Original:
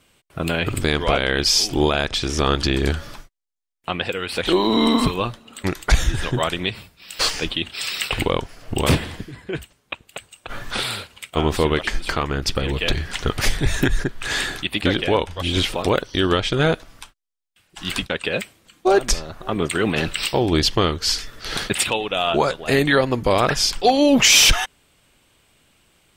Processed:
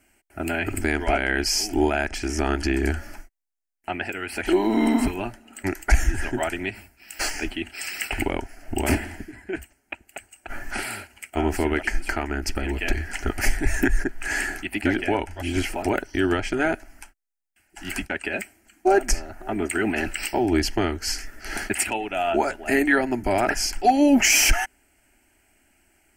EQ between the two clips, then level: static phaser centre 740 Hz, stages 8; 0.0 dB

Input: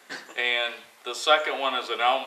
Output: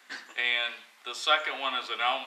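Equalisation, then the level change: Chebyshev high-pass 230 Hz, order 3; peaking EQ 450 Hz -10.5 dB 1.9 oct; peaking EQ 12 kHz -8 dB 1.6 oct; 0.0 dB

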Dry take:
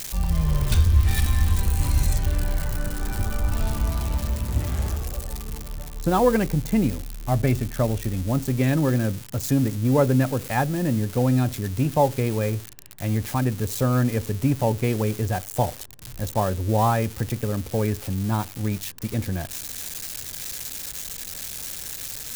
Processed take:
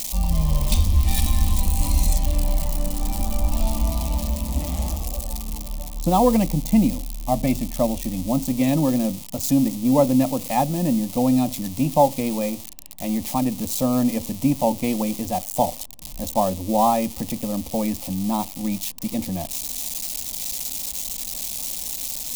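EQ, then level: static phaser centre 410 Hz, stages 6; +5.0 dB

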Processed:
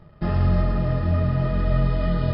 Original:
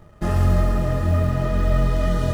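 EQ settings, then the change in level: brick-wall FIR low-pass 5.3 kHz; peaking EQ 150 Hz +7.5 dB 0.5 oct; -3.0 dB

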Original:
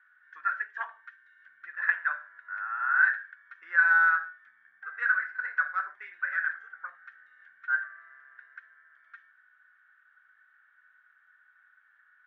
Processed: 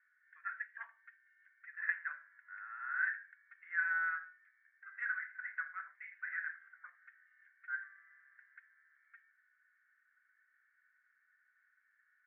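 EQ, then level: band-pass filter 2.1 kHz, Q 5.3; distance through air 270 m; tilt EQ -2 dB/octave; +1.5 dB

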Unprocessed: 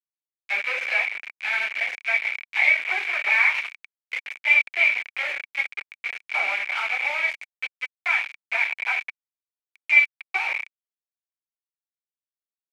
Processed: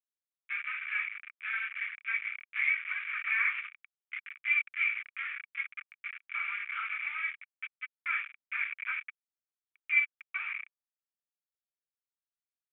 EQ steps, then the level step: Chebyshev band-pass 1.2–3.5 kHz, order 4; distance through air 410 m; treble shelf 2.3 kHz -10 dB; 0.0 dB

